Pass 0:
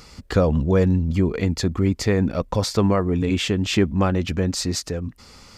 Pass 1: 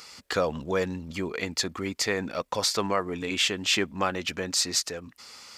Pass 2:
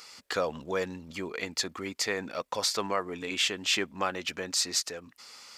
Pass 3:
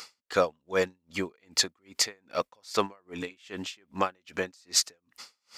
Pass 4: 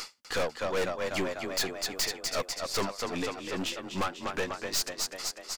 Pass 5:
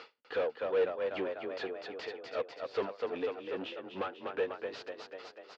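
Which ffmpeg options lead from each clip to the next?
-af "highpass=f=1.3k:p=1,volume=2.5dB"
-af "lowshelf=f=200:g=-9,volume=-2.5dB"
-af "aeval=exprs='val(0)*pow(10,-39*(0.5-0.5*cos(2*PI*2.5*n/s))/20)':c=same,volume=6.5dB"
-filter_complex "[0:a]asplit=9[a][b][c][d][e][f][g][h][i];[b]adelay=247,afreqshift=33,volume=-11dB[j];[c]adelay=494,afreqshift=66,volume=-14.9dB[k];[d]adelay=741,afreqshift=99,volume=-18.8dB[l];[e]adelay=988,afreqshift=132,volume=-22.6dB[m];[f]adelay=1235,afreqshift=165,volume=-26.5dB[n];[g]adelay=1482,afreqshift=198,volume=-30.4dB[o];[h]adelay=1729,afreqshift=231,volume=-34.3dB[p];[i]adelay=1976,afreqshift=264,volume=-38.1dB[q];[a][j][k][l][m][n][o][p][q]amix=inputs=9:normalize=0,aeval=exprs='(tanh(50.1*val(0)+0.5)-tanh(0.5))/50.1':c=same,volume=7.5dB"
-af "highpass=160,equalizer=f=170:t=q:w=4:g=-9,equalizer=f=240:t=q:w=4:g=-3,equalizer=f=460:t=q:w=4:g=9,equalizer=f=1.1k:t=q:w=4:g=-4,equalizer=f=2.1k:t=q:w=4:g=-6,lowpass=f=3.1k:w=0.5412,lowpass=f=3.1k:w=1.3066,volume=-5dB"

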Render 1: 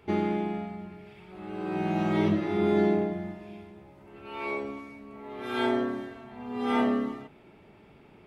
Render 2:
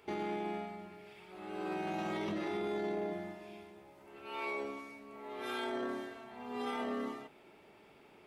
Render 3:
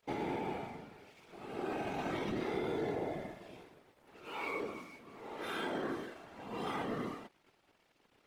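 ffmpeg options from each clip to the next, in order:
-af "bass=f=250:g=-12,treble=f=4k:g=6,alimiter=level_in=3.5dB:limit=-24dB:level=0:latency=1:release=12,volume=-3.5dB,volume=-2.5dB"
-af "aeval=exprs='sgn(val(0))*max(abs(val(0))-0.00126,0)':c=same,afftfilt=real='hypot(re,im)*cos(2*PI*random(0))':imag='hypot(re,im)*sin(2*PI*random(1))':win_size=512:overlap=0.75,volume=6.5dB"

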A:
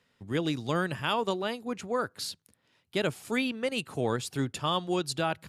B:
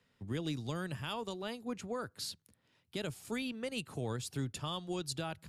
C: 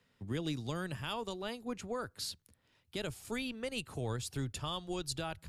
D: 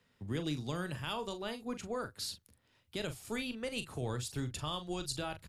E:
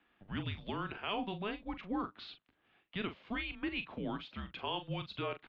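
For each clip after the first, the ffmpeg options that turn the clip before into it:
-filter_complex "[0:a]lowshelf=f=220:g=6.5,acrossover=split=100|3700[a][b][c];[b]alimiter=level_in=0.5dB:limit=-24dB:level=0:latency=1:release=412,volume=-0.5dB[d];[a][d][c]amix=inputs=3:normalize=0,volume=-4.5dB"
-af "asubboost=boost=6:cutoff=68,volume=1dB"
-filter_complex "[0:a]asplit=2[a][b];[b]adelay=40,volume=-10dB[c];[a][c]amix=inputs=2:normalize=0"
-af "highpass=f=340:t=q:w=0.5412,highpass=f=340:t=q:w=1.307,lowpass=f=3.5k:t=q:w=0.5176,lowpass=f=3.5k:t=q:w=0.7071,lowpass=f=3.5k:t=q:w=1.932,afreqshift=-200,volume=2.5dB"

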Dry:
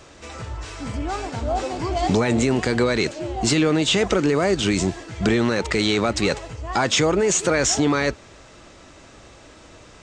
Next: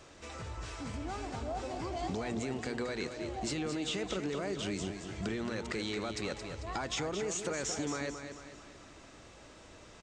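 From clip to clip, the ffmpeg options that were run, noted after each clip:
-filter_complex "[0:a]bandreject=f=60:t=h:w=6,bandreject=f=120:t=h:w=6,acompressor=threshold=-29dB:ratio=2.5,asplit=2[a][b];[b]aecho=0:1:222|444|666|888|1110:0.398|0.187|0.0879|0.0413|0.0194[c];[a][c]amix=inputs=2:normalize=0,volume=-8.5dB"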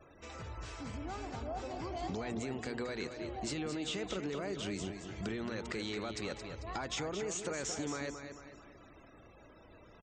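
-af "afftfilt=real='re*gte(hypot(re,im),0.00224)':imag='im*gte(hypot(re,im),0.00224)':win_size=1024:overlap=0.75,volume=-2.5dB"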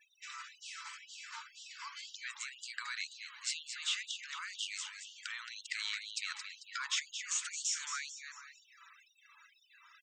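-af "equalizer=f=940:t=o:w=0.34:g=-5.5,bandreject=f=55.46:t=h:w=4,bandreject=f=110.92:t=h:w=4,bandreject=f=166.38:t=h:w=4,bandreject=f=221.84:t=h:w=4,bandreject=f=277.3:t=h:w=4,bandreject=f=332.76:t=h:w=4,bandreject=f=388.22:t=h:w=4,bandreject=f=443.68:t=h:w=4,bandreject=f=499.14:t=h:w=4,bandreject=f=554.6:t=h:w=4,bandreject=f=610.06:t=h:w=4,bandreject=f=665.52:t=h:w=4,bandreject=f=720.98:t=h:w=4,bandreject=f=776.44:t=h:w=4,bandreject=f=831.9:t=h:w=4,bandreject=f=887.36:t=h:w=4,bandreject=f=942.82:t=h:w=4,bandreject=f=998.28:t=h:w=4,bandreject=f=1.05374k:t=h:w=4,bandreject=f=1.1092k:t=h:w=4,bandreject=f=1.16466k:t=h:w=4,bandreject=f=1.22012k:t=h:w=4,bandreject=f=1.27558k:t=h:w=4,afftfilt=real='re*gte(b*sr/1024,850*pow(2800/850,0.5+0.5*sin(2*PI*2*pts/sr)))':imag='im*gte(b*sr/1024,850*pow(2800/850,0.5+0.5*sin(2*PI*2*pts/sr)))':win_size=1024:overlap=0.75,volume=5.5dB"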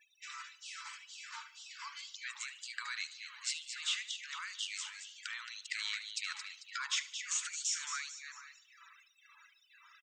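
-af "aecho=1:1:73|146|219|292:0.141|0.0636|0.0286|0.0129"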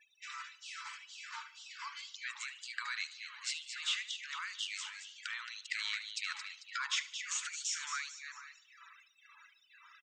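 -af "highshelf=f=6.1k:g=-9,volume=2.5dB"

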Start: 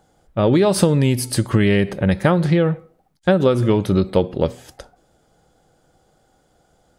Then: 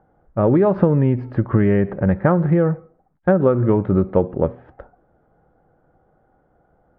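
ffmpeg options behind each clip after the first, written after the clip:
-af "lowpass=f=1.6k:w=0.5412,lowpass=f=1.6k:w=1.3066"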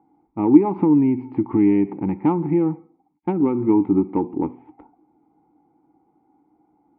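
-filter_complex "[0:a]acontrast=24,asplit=3[a][b][c];[a]bandpass=f=300:t=q:w=8,volume=0dB[d];[b]bandpass=f=870:t=q:w=8,volume=-6dB[e];[c]bandpass=f=2.24k:t=q:w=8,volume=-9dB[f];[d][e][f]amix=inputs=3:normalize=0,volume=6dB"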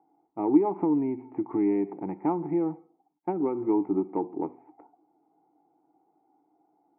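-af "highpass=190,equalizer=f=230:t=q:w=4:g=-8,equalizer=f=410:t=q:w=4:g=4,equalizer=f=680:t=q:w=4:g=10,lowpass=f=2.2k:w=0.5412,lowpass=f=2.2k:w=1.3066,volume=-7.5dB"

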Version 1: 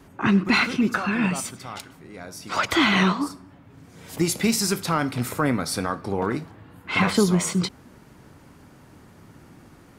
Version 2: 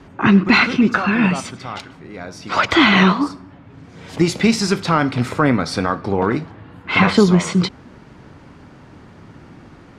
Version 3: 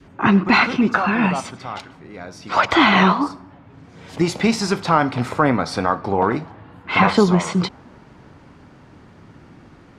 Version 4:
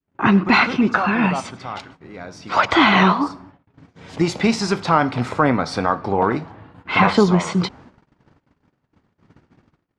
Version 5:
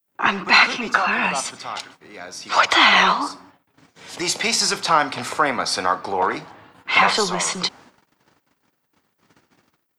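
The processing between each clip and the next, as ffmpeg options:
-af "lowpass=4.6k,volume=7dB"
-af "adynamicequalizer=threshold=0.0251:dfrequency=830:dqfactor=1.2:tfrequency=830:tqfactor=1.2:attack=5:release=100:ratio=0.375:range=4:mode=boostabove:tftype=bell,volume=-3.5dB"
-af "lowpass=8.2k,agate=range=-38dB:threshold=-42dB:ratio=16:detection=peak"
-filter_complex "[0:a]aemphasis=mode=production:type=riaa,acrossover=split=100|400|4400[a][b][c][d];[b]asoftclip=type=tanh:threshold=-31dB[e];[a][e][c][d]amix=inputs=4:normalize=0"

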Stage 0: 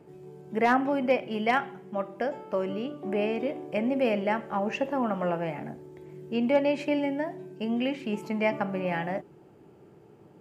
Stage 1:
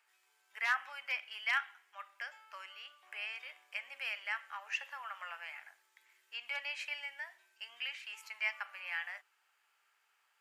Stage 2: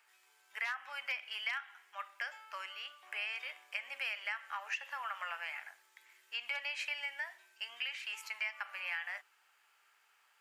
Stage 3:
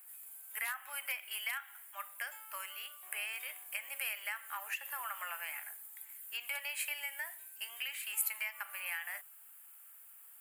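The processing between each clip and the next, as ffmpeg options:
-af "highpass=f=1.4k:w=0.5412,highpass=f=1.4k:w=1.3066,volume=-1.5dB"
-af "acompressor=threshold=-39dB:ratio=16,volume=5dB"
-af "aexciter=amount=12.7:drive=9.3:freq=8.7k,volume=-1.5dB"

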